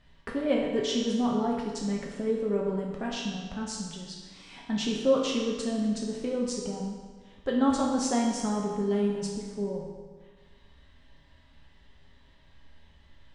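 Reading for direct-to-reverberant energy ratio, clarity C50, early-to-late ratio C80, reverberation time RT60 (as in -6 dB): -2.5 dB, 2.0 dB, 3.5 dB, 1.5 s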